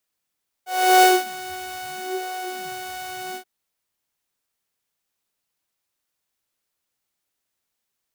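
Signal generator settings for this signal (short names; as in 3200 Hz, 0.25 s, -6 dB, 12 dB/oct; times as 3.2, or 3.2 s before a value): synth patch with filter wobble F#5, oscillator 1 saw, oscillator 2 saw, interval -12 st, oscillator 2 level -15 dB, noise -9 dB, filter highpass, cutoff 120 Hz, Q 6.2, filter envelope 2 oct, filter decay 0.24 s, filter sustain 30%, attack 0.368 s, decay 0.21 s, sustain -18 dB, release 0.09 s, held 2.69 s, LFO 0.76 Hz, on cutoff 1.4 oct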